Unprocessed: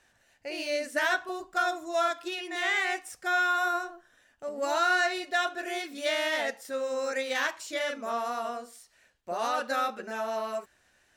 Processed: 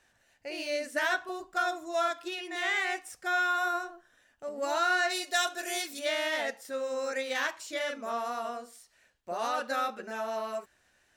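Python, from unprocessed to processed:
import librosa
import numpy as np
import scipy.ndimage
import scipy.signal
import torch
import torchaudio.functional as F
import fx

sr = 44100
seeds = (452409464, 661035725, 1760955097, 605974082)

y = fx.bass_treble(x, sr, bass_db=-8, treble_db=14, at=(5.09, 5.98), fade=0.02)
y = y * 10.0 ** (-2.0 / 20.0)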